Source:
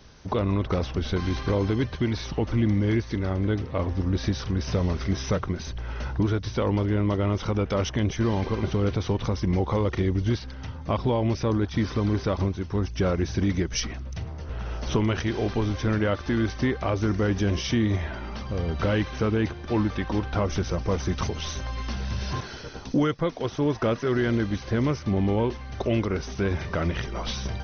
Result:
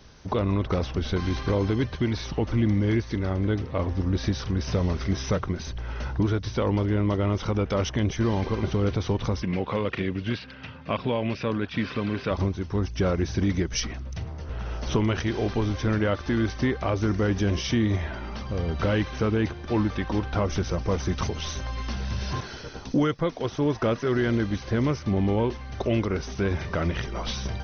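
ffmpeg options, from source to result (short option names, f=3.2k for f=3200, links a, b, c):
-filter_complex "[0:a]asettb=1/sr,asplit=3[a][b][c];[a]atrim=end=9.424[d];[b]atrim=start=9.42:end=12.31,asetpts=PTS-STARTPTS,afade=t=in:d=0.004:c=qsin,afade=t=out:st=2.886:d=0.004:c=qsin,highpass=150,equalizer=f=340:t=q:w=4:g=-6,equalizer=f=830:t=q:w=4:g=-5,equalizer=f=1.6k:t=q:w=4:g=4,equalizer=f=2.6k:t=q:w=4:g=10,lowpass=f=4.7k:w=0.5412,lowpass=f=4.7k:w=1.3066[e];[c]atrim=start=12.306[f];[d][e]acrossfade=d=0.004:c1=hsin:c2=qsin[g];[g][f]acrossfade=d=0.004:c1=qsin:c2=hsin"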